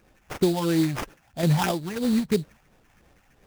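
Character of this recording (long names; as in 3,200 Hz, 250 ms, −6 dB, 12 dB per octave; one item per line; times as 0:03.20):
sample-and-hold tremolo
phaser sweep stages 6, 3 Hz, lowest notch 370–3,600 Hz
aliases and images of a low sample rate 4,200 Hz, jitter 20%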